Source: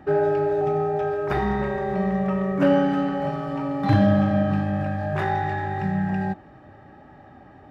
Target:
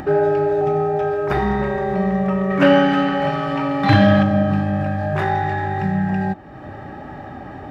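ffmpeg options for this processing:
-filter_complex "[0:a]asettb=1/sr,asplit=3[a][b][c];[a]atrim=end=2.504[d];[b]atrim=start=2.5:end=4.23,asetpts=PTS-STARTPTS,afade=t=in:d=0.004:c=qsin,afade=t=out:st=1.726:d=0.004:c=qsin,equalizer=f=2.6k:w=0.53:g=9.5[e];[c]atrim=start=4.226[f];[d][e]acrossfade=d=0.004:c1=hsin:c2=qsin[g];[g][f]acrossfade=d=0.004:c1=qsin:c2=hsin,asplit=2[h][i];[i]acompressor=mode=upward:threshold=-21dB:ratio=2.5,volume=2dB[j];[h][j]amix=inputs=2:normalize=0,volume=-3dB"

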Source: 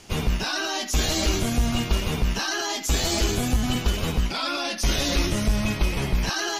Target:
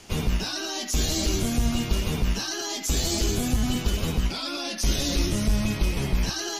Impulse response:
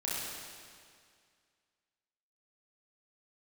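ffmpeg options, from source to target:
-filter_complex "[0:a]bandreject=f=60:t=h:w=6,bandreject=f=120:t=h:w=6,acrossover=split=460|3600[a][b][c];[b]alimiter=level_in=6.5dB:limit=-24dB:level=0:latency=1:release=64,volume=-6.5dB[d];[a][d][c]amix=inputs=3:normalize=0"

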